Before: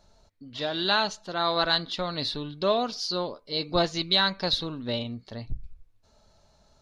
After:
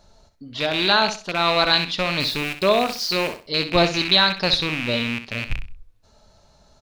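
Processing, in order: rattle on loud lows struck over -38 dBFS, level -21 dBFS; 2.20–3.46 s: small samples zeroed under -37.5 dBFS; feedback delay 64 ms, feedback 25%, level -10.5 dB; trim +6 dB

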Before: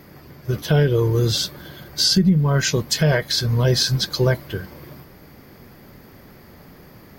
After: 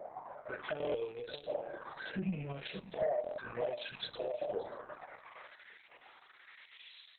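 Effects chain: rattle on loud lows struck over -25 dBFS, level -28 dBFS; 2.11–2.58 s: ten-band graphic EQ 125 Hz +10 dB, 250 Hz +11 dB, 500 Hz -5 dB, 1 kHz -4 dB, 4 kHz -11 dB, 8 kHz -3 dB; harmonic-percussive split harmonic +9 dB; LFO band-pass saw up 0.68 Hz 600–7100 Hz; filtered feedback delay 582 ms, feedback 42%, low-pass 2.4 kHz, level -16 dB; band-pass sweep 620 Hz -> 4.4 kHz, 4.88–6.32 s; compression 6:1, threshold -41 dBFS, peak gain reduction 21.5 dB; touch-sensitive flanger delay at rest 2.8 ms, full sweep at -43 dBFS; on a send: flutter echo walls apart 6 m, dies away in 0.23 s; on the sum: sine folder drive 3 dB, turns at -31 dBFS; buffer glitch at 0.78/3.22 s, samples 1024, times 6; trim +5 dB; Opus 6 kbps 48 kHz

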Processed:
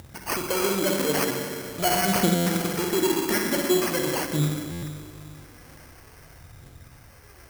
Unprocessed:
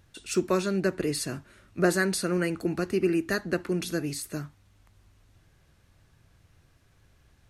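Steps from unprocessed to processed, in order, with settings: saturation -26.5 dBFS, distortion -8 dB; phaser 0.45 Hz, delay 4.3 ms, feedback 72%; upward compressor, threshold -42 dBFS; spring tank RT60 2.5 s, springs 46/60 ms, chirp 30 ms, DRR -0.5 dB; sample-and-hold 12×; high-pass 78 Hz 6 dB/octave; treble shelf 6 kHz +10 dB; buffer glitch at 2.35/4.71 s, samples 512, times 9; trim +3 dB

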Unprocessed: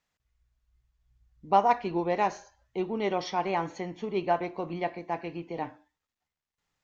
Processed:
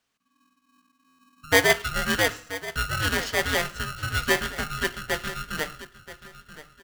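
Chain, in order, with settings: hum notches 50/100/150/200/250/300/350 Hz; in parallel at -2.5 dB: compression, threshold -34 dBFS, peak gain reduction 16.5 dB; on the sum: frequency shift +380 Hz; on a send: feedback delay 980 ms, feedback 26%, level -14 dB; on the sum: dynamic bell 2.2 kHz, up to +5 dB, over -36 dBFS, Q 0.93; buffer glitch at 1.07 s, samples 512, times 9; polarity switched at an audio rate 690 Hz

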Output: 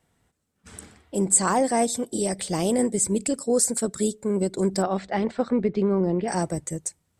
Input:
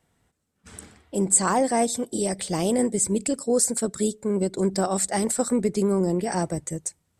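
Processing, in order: 4.82–6.28 s: low-pass 3.6 kHz 24 dB/octave

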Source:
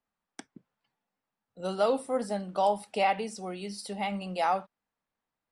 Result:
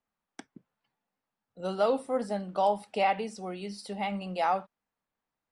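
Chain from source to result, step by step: treble shelf 6.7 kHz -9 dB

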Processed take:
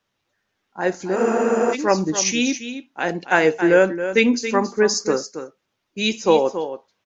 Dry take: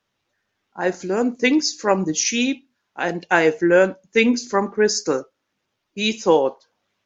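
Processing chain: delay 276 ms -10.5 dB; spectral freeze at 1.18 s, 0.56 s

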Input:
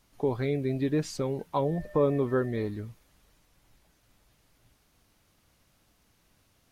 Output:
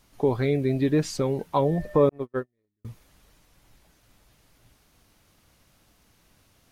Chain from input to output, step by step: 2.09–2.85 s: gate -23 dBFS, range -52 dB; trim +5 dB

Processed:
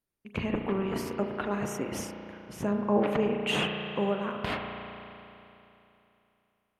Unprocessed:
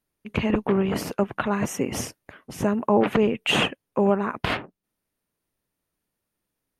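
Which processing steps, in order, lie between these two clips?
spring tank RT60 3 s, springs 34 ms, chirp 60 ms, DRR 3 dB; trim -8 dB

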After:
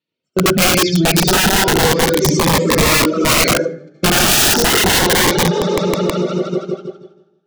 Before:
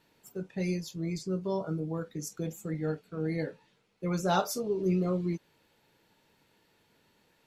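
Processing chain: 2.89–3.41 s: treble shelf 3.6 kHz +10.5 dB; echo with a slow build-up 160 ms, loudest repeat 5, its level -17 dB; gate -39 dBFS, range -42 dB; cabinet simulation 140–5200 Hz, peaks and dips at 720 Hz -5 dB, 1 kHz -8 dB, 3.2 kHz +8 dB; reverberation RT60 0.70 s, pre-delay 62 ms, DRR -3.5 dB; in parallel at -8.5 dB: saturation -25.5 dBFS, distortion -10 dB; on the sum: reverb removal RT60 1.1 s; integer overflow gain 26 dB; loudness maximiser +30 dB; Shepard-style phaser rising 0.32 Hz; trim -5.5 dB

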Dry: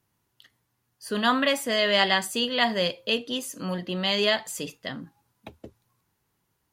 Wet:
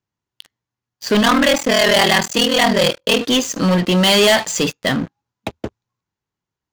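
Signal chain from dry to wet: resampled via 16 kHz; 1.21–3.21 s: ring modulator 20 Hz; waveshaping leveller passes 5

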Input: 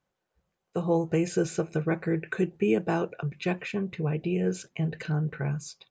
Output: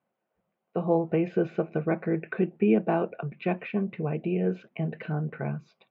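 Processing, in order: cabinet simulation 160–2700 Hz, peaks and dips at 220 Hz +7 dB, 660 Hz +6 dB, 1.7 kHz -4 dB

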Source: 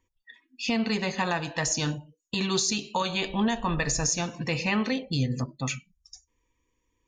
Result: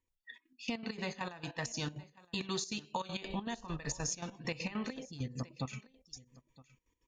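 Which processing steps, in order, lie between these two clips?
compression, threshold -32 dBFS, peak gain reduction 10.5 dB; trance gate ".x.xx.x..x" 199 bpm -12 dB; delay 965 ms -21 dB; trim -1.5 dB

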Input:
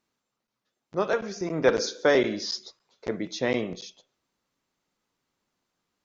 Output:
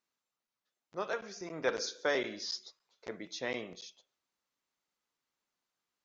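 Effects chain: bass shelf 480 Hz -10.5 dB; trim -6.5 dB

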